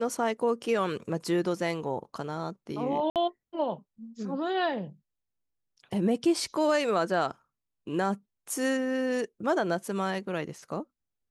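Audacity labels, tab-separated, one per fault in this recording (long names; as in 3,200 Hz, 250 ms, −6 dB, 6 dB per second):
3.100000	3.160000	drop-out 58 ms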